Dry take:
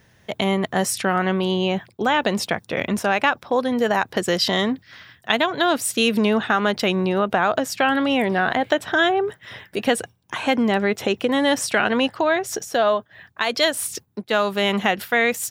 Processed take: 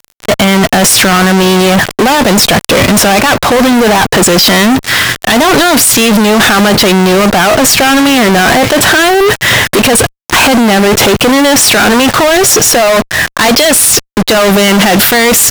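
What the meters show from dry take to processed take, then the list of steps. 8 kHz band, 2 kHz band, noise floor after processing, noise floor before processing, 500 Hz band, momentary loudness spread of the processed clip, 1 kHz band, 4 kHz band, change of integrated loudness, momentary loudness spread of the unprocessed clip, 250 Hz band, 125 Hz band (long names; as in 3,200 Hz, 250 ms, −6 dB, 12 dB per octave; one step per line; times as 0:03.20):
+22.0 dB, +14.0 dB, −48 dBFS, −57 dBFS, +12.5 dB, 4 LU, +13.0 dB, +16.5 dB, +14.5 dB, 6 LU, +14.5 dB, +16.5 dB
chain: compressor whose output falls as the input rises −25 dBFS, ratio −1
leveller curve on the samples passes 2
fuzz pedal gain 42 dB, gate −45 dBFS
level +8 dB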